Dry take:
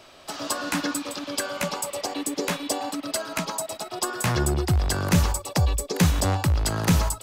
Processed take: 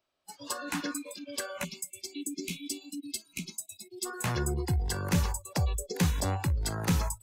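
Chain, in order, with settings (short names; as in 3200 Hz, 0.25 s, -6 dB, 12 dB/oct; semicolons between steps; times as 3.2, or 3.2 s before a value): spectral noise reduction 25 dB; spectral gain 1.64–4.06, 390–2100 Hz -30 dB; gain -7 dB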